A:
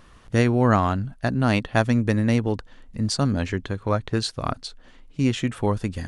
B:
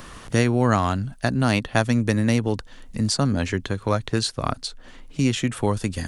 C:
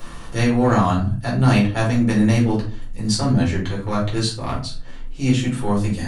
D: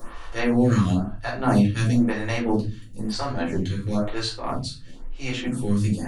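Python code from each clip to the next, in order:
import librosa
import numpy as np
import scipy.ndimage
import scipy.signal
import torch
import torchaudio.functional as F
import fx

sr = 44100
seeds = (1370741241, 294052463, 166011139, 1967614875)

y1 = fx.high_shelf(x, sr, hz=4800.0, db=9.5)
y1 = fx.band_squash(y1, sr, depth_pct=40)
y2 = fx.transient(y1, sr, attack_db=-7, sustain_db=-3)
y2 = fx.room_shoebox(y2, sr, seeds[0], volume_m3=240.0, walls='furnished', distance_m=4.3)
y2 = y2 * 10.0 ** (-5.0 / 20.0)
y3 = fx.stagger_phaser(y2, sr, hz=1.0)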